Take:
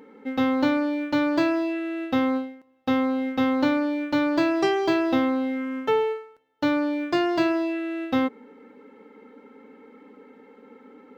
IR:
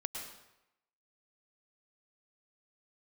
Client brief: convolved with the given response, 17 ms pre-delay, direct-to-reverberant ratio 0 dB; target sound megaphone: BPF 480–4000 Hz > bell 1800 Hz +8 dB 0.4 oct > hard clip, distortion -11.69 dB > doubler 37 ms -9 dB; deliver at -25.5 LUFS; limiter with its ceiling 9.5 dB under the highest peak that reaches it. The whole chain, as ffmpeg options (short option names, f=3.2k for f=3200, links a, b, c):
-filter_complex "[0:a]alimiter=limit=-19.5dB:level=0:latency=1,asplit=2[a][b];[1:a]atrim=start_sample=2205,adelay=17[c];[b][c]afir=irnorm=-1:irlink=0,volume=-0.5dB[d];[a][d]amix=inputs=2:normalize=0,highpass=480,lowpass=4k,equalizer=f=1.8k:t=o:w=0.4:g=8,asoftclip=type=hard:threshold=-24.5dB,asplit=2[e][f];[f]adelay=37,volume=-9dB[g];[e][g]amix=inputs=2:normalize=0,volume=3dB"